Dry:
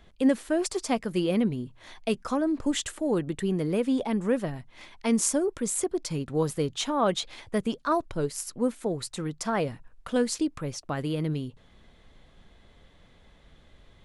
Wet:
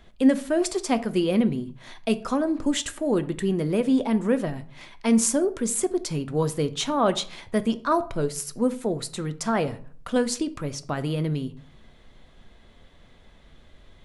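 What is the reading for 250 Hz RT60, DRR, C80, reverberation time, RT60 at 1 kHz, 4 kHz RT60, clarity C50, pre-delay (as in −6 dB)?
0.65 s, 11.0 dB, 21.0 dB, 0.50 s, 0.50 s, 0.35 s, 17.0 dB, 3 ms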